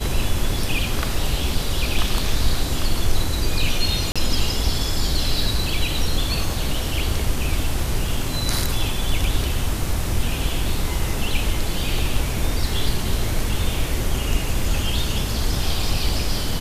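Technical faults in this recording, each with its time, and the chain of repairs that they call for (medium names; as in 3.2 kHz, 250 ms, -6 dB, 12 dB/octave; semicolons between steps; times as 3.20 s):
4.12–4.16 s: dropout 36 ms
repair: interpolate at 4.12 s, 36 ms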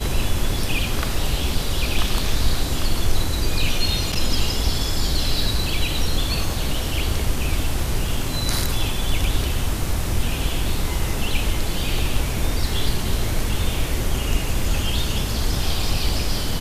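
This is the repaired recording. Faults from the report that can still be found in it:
nothing left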